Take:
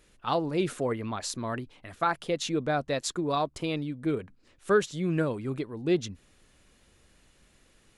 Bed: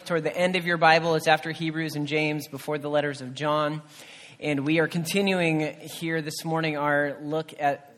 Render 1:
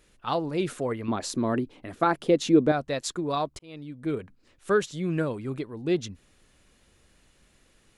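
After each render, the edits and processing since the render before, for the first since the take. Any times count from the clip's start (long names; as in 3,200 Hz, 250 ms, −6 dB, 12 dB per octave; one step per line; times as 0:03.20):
0:01.08–0:02.72: parametric band 310 Hz +11.5 dB 1.9 octaves
0:03.59–0:04.14: fade in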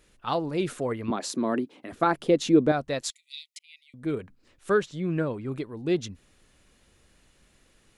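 0:01.10–0:01.92: high-pass filter 170 Hz 24 dB per octave
0:03.10–0:03.94: linear-phase brick-wall high-pass 1,900 Hz
0:04.80–0:05.52: low-pass filter 2,900 Hz 6 dB per octave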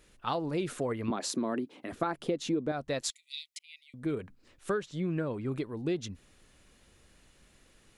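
downward compressor 6 to 1, threshold −28 dBFS, peak gain reduction 14 dB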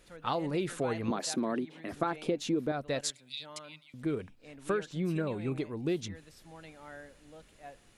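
mix in bed −24.5 dB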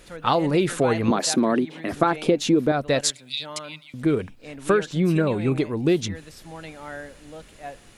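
level +11.5 dB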